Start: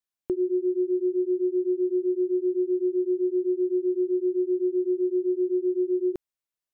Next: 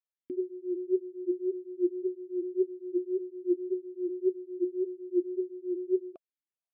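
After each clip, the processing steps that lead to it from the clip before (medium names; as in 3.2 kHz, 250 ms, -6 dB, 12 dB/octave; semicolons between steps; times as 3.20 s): talking filter a-i 1.8 Hz; trim +1.5 dB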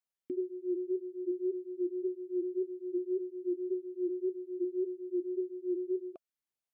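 peak limiter -26.5 dBFS, peak gain reduction 8.5 dB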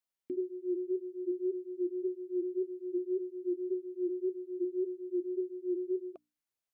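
hum notches 60/120/180/240/300 Hz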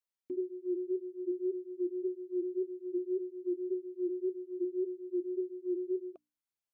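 dynamic bell 360 Hz, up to +5 dB, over -42 dBFS, Q 0.89; trim -5.5 dB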